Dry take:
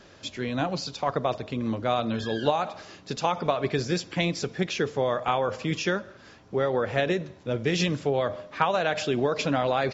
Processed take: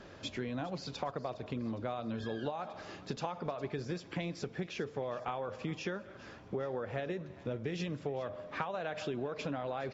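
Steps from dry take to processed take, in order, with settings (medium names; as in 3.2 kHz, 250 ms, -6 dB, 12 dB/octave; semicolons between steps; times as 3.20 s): treble shelf 3.1 kHz -10 dB; compression 6:1, threshold -36 dBFS, peak gain reduction 17 dB; thinning echo 410 ms, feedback 56%, high-pass 1.1 kHz, level -17 dB; trim +1 dB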